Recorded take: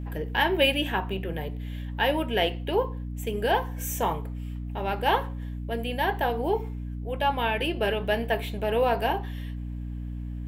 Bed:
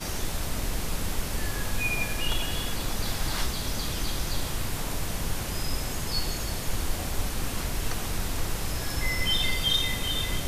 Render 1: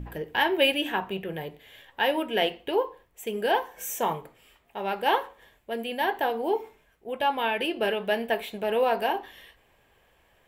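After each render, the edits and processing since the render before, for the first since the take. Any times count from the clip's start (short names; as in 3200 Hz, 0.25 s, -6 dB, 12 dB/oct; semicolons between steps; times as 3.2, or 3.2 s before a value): de-hum 60 Hz, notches 5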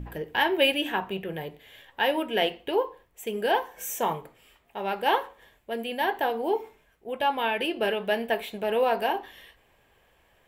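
nothing audible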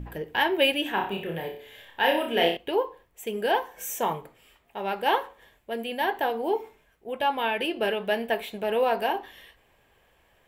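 0.94–2.57 flutter echo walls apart 5.1 m, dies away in 0.45 s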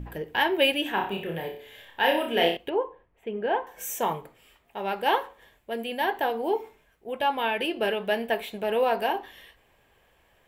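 2.69–3.67 air absorption 500 m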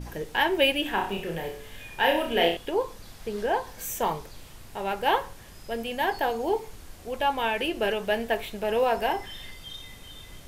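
add bed -16.5 dB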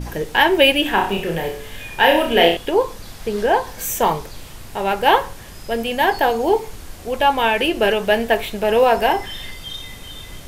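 gain +9.5 dB; limiter -1 dBFS, peak gain reduction 1.5 dB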